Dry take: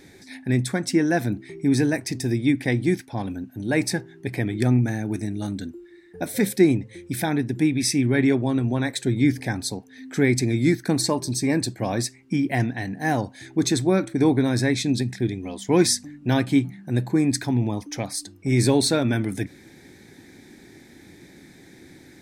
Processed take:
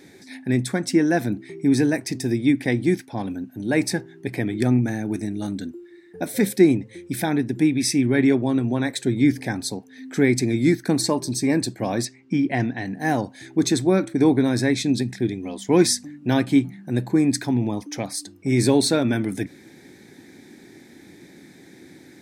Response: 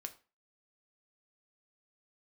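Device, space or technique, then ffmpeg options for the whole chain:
filter by subtraction: -filter_complex "[0:a]asettb=1/sr,asplit=3[s0][s1][s2];[s0]atrim=end=12.054[s3];[s1]atrim=start=12.05:end=12.86,asetpts=PTS-STARTPTS,afade=t=in:d=0.004:c=qsin,afade=t=out:st=0.806:d=0.004:c=qsin,lowpass=5600[s4];[s2]atrim=start=12.856[s5];[s3][s4]acrossfade=d=0.004:c1=hsin:c2=qsin[s6];[s6][s5]acrossfade=d=0.004:c1=qsin:c2=hsin,asplit=2[s7][s8];[s8]lowpass=230,volume=-1[s9];[s7][s9]amix=inputs=2:normalize=0"

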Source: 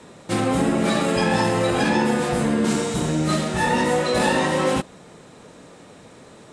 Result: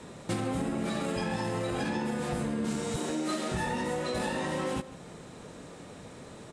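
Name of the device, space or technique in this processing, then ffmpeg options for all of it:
ASMR close-microphone chain: -filter_complex "[0:a]asettb=1/sr,asplit=3[s0][s1][s2];[s0]atrim=end=2.964[s3];[s1]atrim=start=2.96:end=3.52,asetpts=PTS-STARTPTS,afade=t=in:d=0.004:c=qsin,afade=t=out:st=0.556:d=0.004:c=qsin,highpass=f=250:w=0.5412,highpass=f=250:w=1.3066[s4];[s2]atrim=start=3.516[s5];[s3][s4]acrossfade=d=0.004:c1=hsin:c2=qsin[s6];[s6][s5]acrossfade=d=0.004:c1=qsin:c2=hsin,lowshelf=f=150:g=6.5,acompressor=threshold=0.0501:ratio=10,highshelf=f=11000:g=3,asplit=2[s7][s8];[s8]adelay=151.6,volume=0.178,highshelf=f=4000:g=-3.41[s9];[s7][s9]amix=inputs=2:normalize=0,volume=0.75"

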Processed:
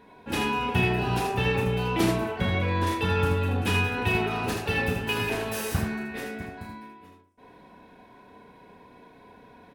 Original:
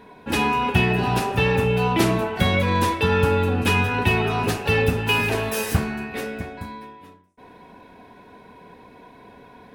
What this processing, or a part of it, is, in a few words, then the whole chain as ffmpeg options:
slapback doubling: -filter_complex "[0:a]asplit=3[s0][s1][s2];[s1]adelay=33,volume=0.562[s3];[s2]adelay=79,volume=0.562[s4];[s0][s3][s4]amix=inputs=3:normalize=0,asettb=1/sr,asplit=3[s5][s6][s7];[s5]atrim=end=2.364[s8];[s6]atrim=start=2.36:end=2.87,asetpts=PTS-STARTPTS,afade=t=in:d=0.004:c=qsin,afade=t=out:st=0.506:d=0.004:c=qsin,lowpass=f=2700:p=1[s9];[s7]atrim=start=2.866[s10];[s8][s9]acrossfade=d=0.004:c1=hsin:c2=qsin[s11];[s11][s10]acrossfade=d=0.004:c1=qsin:c2=hsin,volume=0.447"

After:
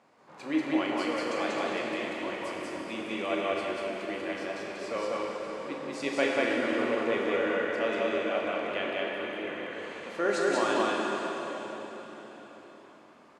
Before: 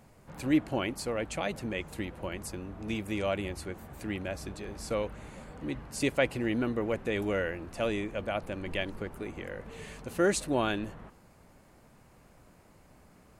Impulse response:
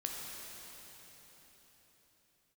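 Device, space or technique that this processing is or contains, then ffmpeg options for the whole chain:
station announcement: -filter_complex "[0:a]highpass=350,lowpass=4900,equalizer=f=1100:t=o:w=0.35:g=4.5,aecho=1:1:34.99|189.5|230.3:0.282|0.891|0.316[s0];[1:a]atrim=start_sample=2205[s1];[s0][s1]afir=irnorm=-1:irlink=0"

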